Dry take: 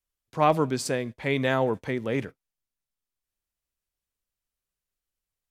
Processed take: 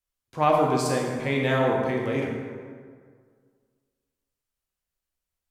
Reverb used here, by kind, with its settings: plate-style reverb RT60 1.9 s, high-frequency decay 0.55×, DRR -1.5 dB; trim -2 dB

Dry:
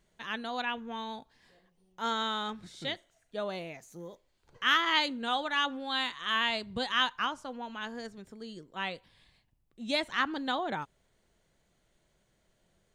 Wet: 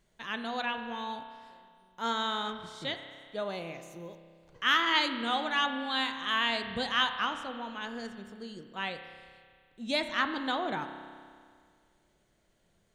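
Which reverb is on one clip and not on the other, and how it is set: spring tank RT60 2 s, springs 30 ms, chirp 20 ms, DRR 7.5 dB

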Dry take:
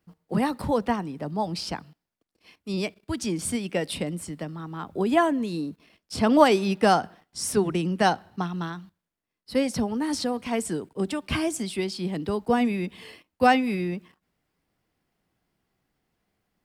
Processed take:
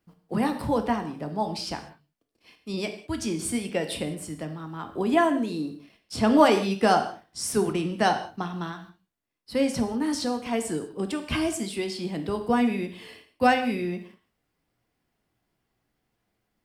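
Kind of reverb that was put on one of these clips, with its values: gated-style reverb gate 220 ms falling, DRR 5.5 dB; trim -1.5 dB

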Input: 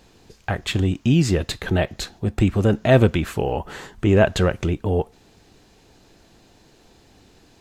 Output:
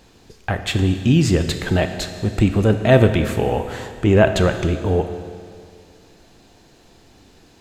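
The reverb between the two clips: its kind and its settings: Schroeder reverb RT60 2.2 s, combs from 25 ms, DRR 8 dB; trim +2 dB

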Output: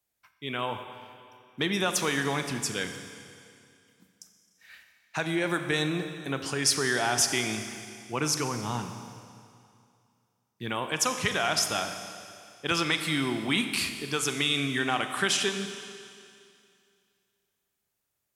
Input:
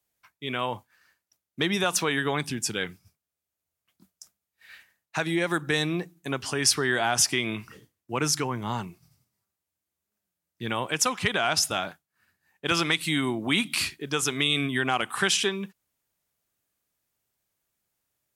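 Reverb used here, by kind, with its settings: Schroeder reverb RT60 2.4 s, combs from 29 ms, DRR 7 dB; trim -2.5 dB

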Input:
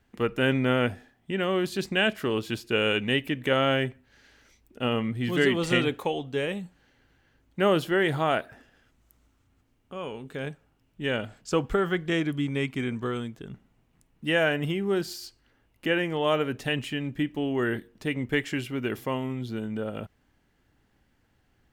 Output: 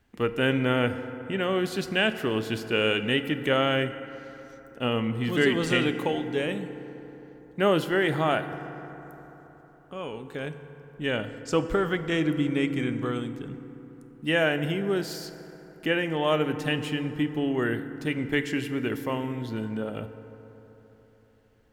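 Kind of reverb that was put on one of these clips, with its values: FDN reverb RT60 3.9 s, high-frequency decay 0.4×, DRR 10 dB

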